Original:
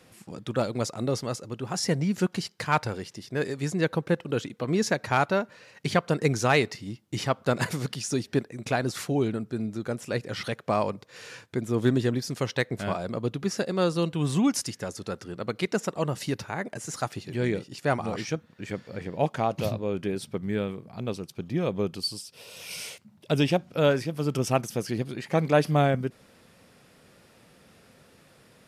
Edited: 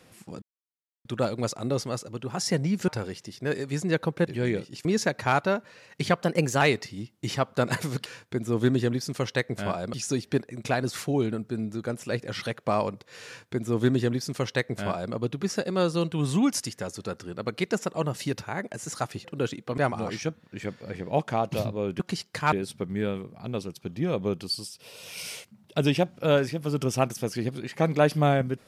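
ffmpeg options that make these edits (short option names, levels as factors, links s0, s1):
-filter_complex "[0:a]asplit=13[s0][s1][s2][s3][s4][s5][s6][s7][s8][s9][s10][s11][s12];[s0]atrim=end=0.42,asetpts=PTS-STARTPTS,afade=t=out:st=0.416:d=0.004:c=hsin,apad=pad_dur=0.63[s13];[s1]atrim=start=0.42:end=2.252,asetpts=PTS-STARTPTS,afade=t=in:d=0.004:c=hsin[s14];[s2]atrim=start=2.778:end=4.172[s15];[s3]atrim=start=17.258:end=17.842[s16];[s4]atrim=start=4.698:end=6.074[s17];[s5]atrim=start=6.07:end=6.51,asetpts=PTS-STARTPTS,asetrate=48951,aresample=44100,atrim=end_sample=17481,asetpts=PTS-STARTPTS[s18];[s6]atrim=start=6.506:end=7.952[s19];[s7]atrim=start=11.268:end=13.152[s20];[s8]atrim=start=7.948:end=17.262[s21];[s9]atrim=start=4.168:end=4.702[s22];[s10]atrim=start=17.838:end=20.062[s23];[s11]atrim=start=2.248:end=2.782[s24];[s12]atrim=start=20.058[s25];[s13][s14]concat=n=2:v=0:a=1[s26];[s26][s15]acrossfade=d=0.004:c1=hsin:c2=hsin[s27];[s27][s16]acrossfade=d=0.004:c1=hsin:c2=hsin[s28];[s28][s17]acrossfade=d=0.004:c1=hsin:c2=hsin[s29];[s29][s18]acrossfade=d=0.004:c1=hsin:c2=hsin[s30];[s30][s19]acrossfade=d=0.004:c1=hsin:c2=hsin[s31];[s31][s20]acrossfade=d=0.004:c1=hsin:c2=hsin[s32];[s32][s21]acrossfade=d=0.004:c1=hsin:c2=hsin[s33];[s33][s22]acrossfade=d=0.004:c1=hsin:c2=hsin[s34];[s34][s23]acrossfade=d=0.004:c1=hsin:c2=hsin[s35];[s35][s24]acrossfade=d=0.004:c1=hsin:c2=hsin[s36];[s36][s25]acrossfade=d=0.004:c1=hsin:c2=hsin"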